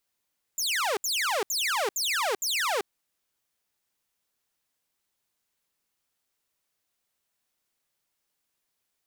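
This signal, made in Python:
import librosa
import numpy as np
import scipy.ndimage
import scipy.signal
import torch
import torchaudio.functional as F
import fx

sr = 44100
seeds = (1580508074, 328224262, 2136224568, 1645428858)

y = fx.laser_zaps(sr, level_db=-22.0, start_hz=7500.0, end_hz=370.0, length_s=0.39, wave='saw', shots=5, gap_s=0.07)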